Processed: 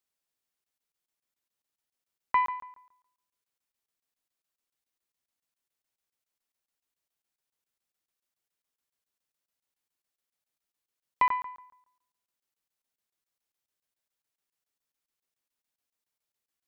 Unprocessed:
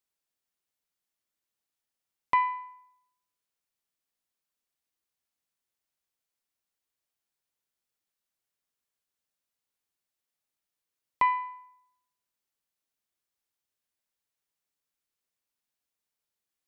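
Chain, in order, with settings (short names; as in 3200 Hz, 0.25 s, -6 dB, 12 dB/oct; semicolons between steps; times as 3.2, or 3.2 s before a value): notches 50/100/150/200 Hz; crackling interface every 0.14 s, samples 1024, zero, from 0.64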